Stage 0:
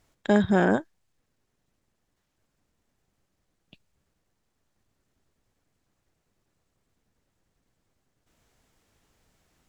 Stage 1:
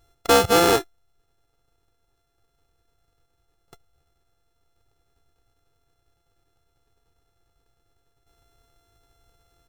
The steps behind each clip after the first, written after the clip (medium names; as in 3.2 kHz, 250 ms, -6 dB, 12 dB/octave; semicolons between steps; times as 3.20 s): sorted samples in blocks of 64 samples; band-stop 2.1 kHz, Q 12; comb 2.4 ms, depth 74%; trim +3.5 dB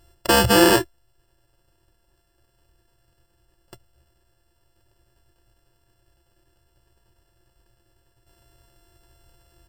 peak limiter -12 dBFS, peak gain reduction 6.5 dB; rippled EQ curve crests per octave 1.3, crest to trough 14 dB; trim +5 dB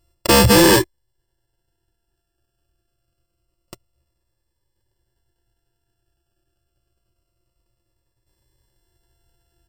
waveshaping leveller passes 3; Shepard-style phaser falling 0.26 Hz; trim -2 dB